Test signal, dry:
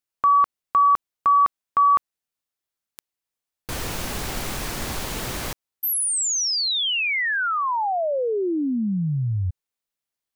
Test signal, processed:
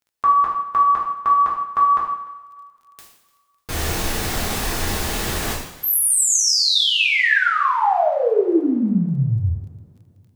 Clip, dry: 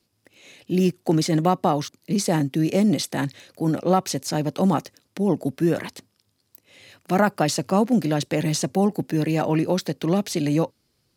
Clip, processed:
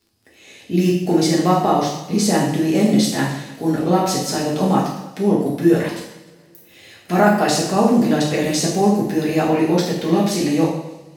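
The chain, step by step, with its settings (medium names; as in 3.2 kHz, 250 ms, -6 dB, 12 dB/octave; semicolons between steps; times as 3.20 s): two-slope reverb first 0.73 s, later 2.9 s, from -26 dB, DRR -5.5 dB; crackle 13 per s -45 dBFS; thinning echo 298 ms, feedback 28%, level -22 dB; trim -1 dB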